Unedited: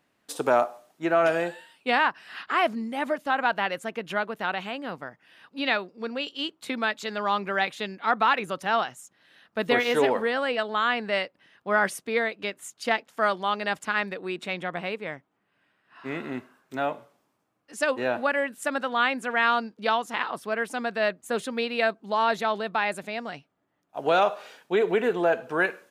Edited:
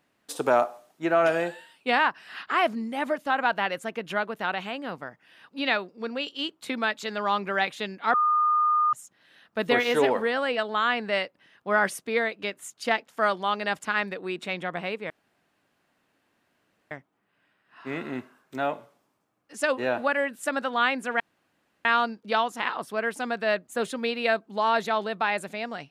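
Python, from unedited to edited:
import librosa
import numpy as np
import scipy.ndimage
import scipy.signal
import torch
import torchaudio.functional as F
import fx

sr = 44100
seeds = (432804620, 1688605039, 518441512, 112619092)

y = fx.edit(x, sr, fx.bleep(start_s=8.14, length_s=0.79, hz=1220.0, db=-19.0),
    fx.insert_room_tone(at_s=15.1, length_s=1.81),
    fx.insert_room_tone(at_s=19.39, length_s=0.65), tone=tone)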